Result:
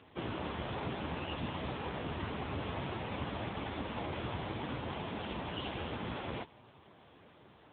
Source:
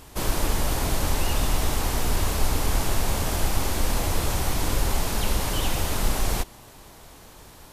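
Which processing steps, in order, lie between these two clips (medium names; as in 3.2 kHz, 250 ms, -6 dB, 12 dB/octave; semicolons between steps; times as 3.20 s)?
trim -5.5 dB; AMR-NB 5.9 kbps 8 kHz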